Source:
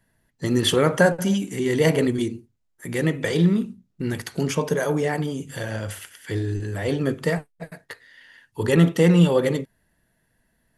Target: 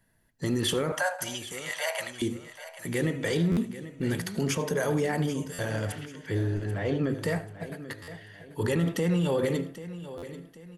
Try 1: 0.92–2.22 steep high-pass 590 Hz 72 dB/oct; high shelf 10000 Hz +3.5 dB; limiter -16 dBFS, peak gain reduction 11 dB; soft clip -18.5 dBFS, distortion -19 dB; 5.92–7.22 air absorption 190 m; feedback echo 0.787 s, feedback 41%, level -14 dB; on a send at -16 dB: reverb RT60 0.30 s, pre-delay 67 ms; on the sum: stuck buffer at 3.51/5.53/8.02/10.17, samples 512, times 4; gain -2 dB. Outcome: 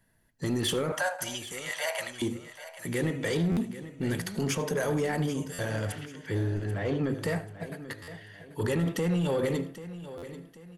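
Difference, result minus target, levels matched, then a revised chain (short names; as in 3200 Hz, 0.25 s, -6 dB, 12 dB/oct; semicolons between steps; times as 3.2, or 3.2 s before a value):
soft clip: distortion +16 dB
0.92–2.22 steep high-pass 590 Hz 72 dB/oct; high shelf 10000 Hz +3.5 dB; limiter -16 dBFS, peak gain reduction 11 dB; soft clip -9.5 dBFS, distortion -34 dB; 5.92–7.22 air absorption 190 m; feedback echo 0.787 s, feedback 41%, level -14 dB; on a send at -16 dB: reverb RT60 0.30 s, pre-delay 67 ms; on the sum: stuck buffer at 3.51/5.53/8.02/10.17, samples 512, times 4; gain -2 dB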